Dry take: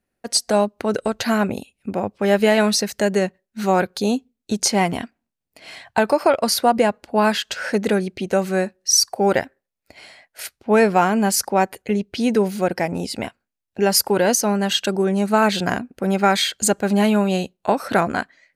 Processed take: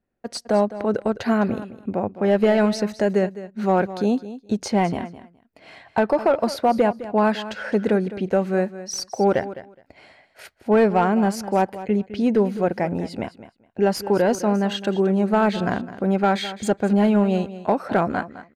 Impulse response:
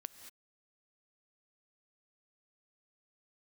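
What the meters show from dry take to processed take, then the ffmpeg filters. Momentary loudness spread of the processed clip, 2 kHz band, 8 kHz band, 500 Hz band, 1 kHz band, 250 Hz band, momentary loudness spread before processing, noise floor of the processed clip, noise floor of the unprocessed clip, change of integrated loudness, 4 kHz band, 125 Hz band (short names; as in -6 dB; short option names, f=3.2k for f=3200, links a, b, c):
10 LU, -5.5 dB, -15.0 dB, -1.0 dB, -2.5 dB, 0.0 dB, 10 LU, -59 dBFS, -83 dBFS, -2.0 dB, -10.5 dB, 0.0 dB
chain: -af "asoftclip=type=hard:threshold=-10dB,lowpass=f=1.2k:p=1,aecho=1:1:209|418:0.188|0.0301"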